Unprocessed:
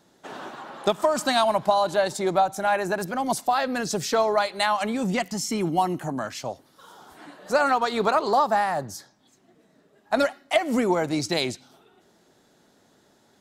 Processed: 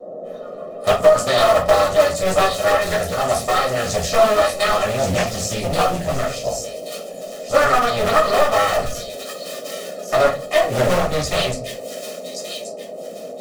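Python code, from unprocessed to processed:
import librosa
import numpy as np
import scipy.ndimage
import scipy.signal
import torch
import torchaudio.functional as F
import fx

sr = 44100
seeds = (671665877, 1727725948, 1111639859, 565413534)

p1 = fx.cycle_switch(x, sr, every=2, mode='muted')
p2 = fx.noise_reduce_blind(p1, sr, reduce_db=17)
p3 = fx.dmg_noise_band(p2, sr, seeds[0], low_hz=200.0, high_hz=630.0, level_db=-42.0)
p4 = p3 + 0.91 * np.pad(p3, (int(1.6 * sr / 1000.0), 0))[:len(p3)]
p5 = p4 + fx.echo_wet_highpass(p4, sr, ms=1129, feedback_pct=33, hz=4000.0, wet_db=-3.5, dry=0)
p6 = fx.room_shoebox(p5, sr, seeds[1], volume_m3=140.0, walls='furnished', distance_m=2.7)
p7 = 10.0 ** (-14.0 / 20.0) * np.tanh(p6 / 10.0 ** (-14.0 / 20.0))
p8 = p6 + (p7 * 10.0 ** (-4.5 / 20.0))
p9 = fx.doppler_dist(p8, sr, depth_ms=0.34)
y = p9 * 10.0 ** (-3.5 / 20.0)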